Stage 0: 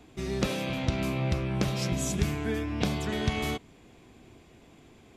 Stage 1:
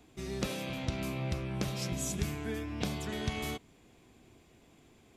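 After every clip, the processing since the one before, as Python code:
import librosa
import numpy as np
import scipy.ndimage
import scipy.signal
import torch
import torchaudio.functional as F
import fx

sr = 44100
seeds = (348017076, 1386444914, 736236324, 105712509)

y = fx.high_shelf(x, sr, hz=6500.0, db=7.0)
y = y * 10.0 ** (-6.5 / 20.0)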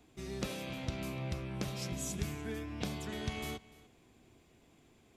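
y = x + 10.0 ** (-20.5 / 20.0) * np.pad(x, (int(295 * sr / 1000.0), 0))[:len(x)]
y = y * 10.0 ** (-3.5 / 20.0)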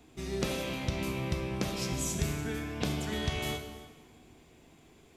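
y = fx.rev_plate(x, sr, seeds[0], rt60_s=1.4, hf_ratio=0.9, predelay_ms=0, drr_db=4.5)
y = y * 10.0 ** (5.0 / 20.0)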